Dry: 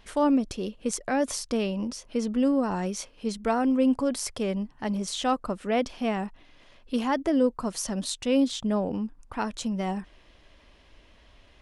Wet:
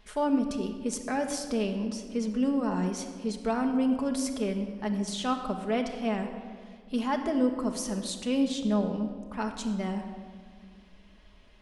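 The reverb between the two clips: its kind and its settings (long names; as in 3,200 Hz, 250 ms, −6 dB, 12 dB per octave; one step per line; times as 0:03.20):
rectangular room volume 3,000 cubic metres, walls mixed, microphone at 1.4 metres
level −4.5 dB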